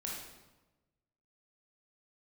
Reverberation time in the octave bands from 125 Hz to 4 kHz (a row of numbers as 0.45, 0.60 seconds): 1.5, 1.3, 1.2, 1.1, 0.90, 0.80 seconds